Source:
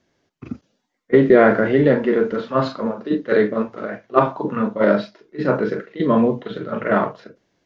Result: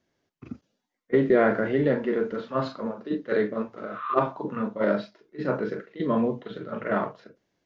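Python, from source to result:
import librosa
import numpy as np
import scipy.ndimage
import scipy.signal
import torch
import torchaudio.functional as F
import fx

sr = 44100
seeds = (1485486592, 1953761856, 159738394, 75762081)

y = fx.spec_repair(x, sr, seeds[0], start_s=3.88, length_s=0.24, low_hz=950.0, high_hz=4100.0, source='both')
y = y * 10.0 ** (-8.0 / 20.0)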